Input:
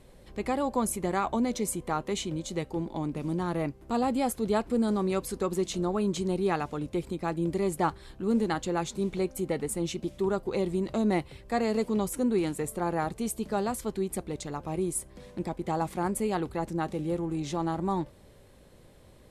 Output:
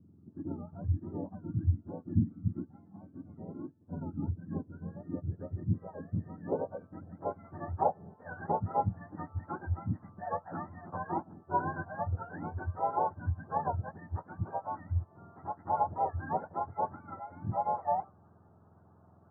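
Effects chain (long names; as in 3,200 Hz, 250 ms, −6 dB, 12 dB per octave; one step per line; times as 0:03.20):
frequency axis turned over on the octave scale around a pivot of 830 Hz
Chebyshev low-pass filter 1,600 Hz, order 5
low-pass filter sweep 280 Hz → 790 Hz, 0:04.67–0:07.96
level −1.5 dB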